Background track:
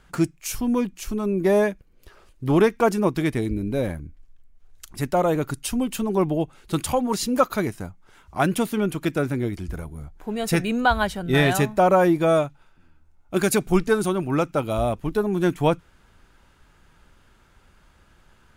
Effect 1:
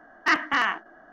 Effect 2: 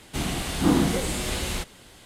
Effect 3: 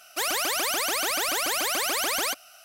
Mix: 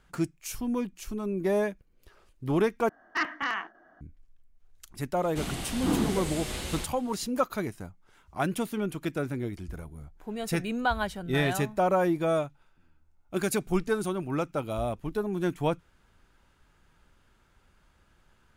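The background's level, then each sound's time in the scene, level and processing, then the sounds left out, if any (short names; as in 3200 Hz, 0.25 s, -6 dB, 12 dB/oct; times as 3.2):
background track -7.5 dB
2.89 replace with 1 -7.5 dB
5.22 add 2 -6.5 dB
not used: 3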